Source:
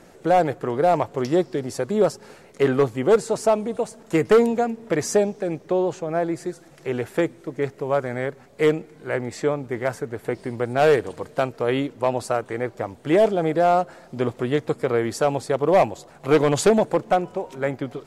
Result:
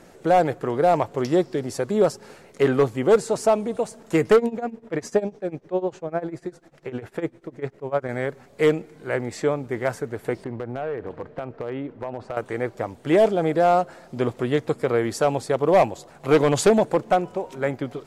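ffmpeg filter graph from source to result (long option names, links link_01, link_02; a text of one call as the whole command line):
ffmpeg -i in.wav -filter_complex "[0:a]asettb=1/sr,asplit=3[link_01][link_02][link_03];[link_01]atrim=end=4.364[link_04];[link_02]atrim=start=4.36:end=8.09,asetpts=PTS-STARTPTS,afade=type=in:duration=0.004:curve=qsin,afade=type=out:start_time=3.726:duration=0.004:curve=qsin,tremolo=f=10:d=0.89,highshelf=frequency=5000:gain=-11[link_05];[link_03]atrim=start=8.086[link_06];[link_04][link_05]acrossfade=duration=0.004:curve1=hsin:curve2=qsin[link_07];[link_07][link_06]acrossfade=duration=0.004:curve1=qsin:curve2=hsin,asettb=1/sr,asplit=3[link_08][link_09][link_10];[link_08]atrim=end=10.444[link_11];[link_09]atrim=start=10.44:end=12.37,asetpts=PTS-STARTPTS,afade=type=in:duration=0.004:curve=qsin,afade=type=out:start_time=1.926:duration=0.004:curve=qsin,lowpass=1800,acompressor=threshold=-25dB:ratio=10:attack=3.2:release=140:knee=1:detection=peak,volume=22dB,asoftclip=hard,volume=-22dB[link_12];[link_10]atrim=start=12.366[link_13];[link_11][link_12]acrossfade=duration=0.004:curve1=hsin:curve2=qsin[link_14];[link_14][link_13]acrossfade=duration=0.004:curve1=qsin:curve2=hsin" out.wav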